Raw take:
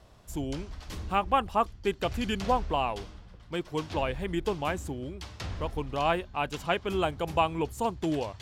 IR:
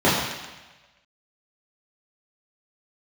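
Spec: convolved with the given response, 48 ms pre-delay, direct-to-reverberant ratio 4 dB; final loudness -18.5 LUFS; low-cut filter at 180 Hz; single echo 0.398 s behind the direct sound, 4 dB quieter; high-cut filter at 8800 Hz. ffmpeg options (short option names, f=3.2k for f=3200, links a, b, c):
-filter_complex "[0:a]highpass=180,lowpass=8.8k,aecho=1:1:398:0.631,asplit=2[a][b];[1:a]atrim=start_sample=2205,adelay=48[c];[b][c]afir=irnorm=-1:irlink=0,volume=-26dB[d];[a][d]amix=inputs=2:normalize=0,volume=9.5dB"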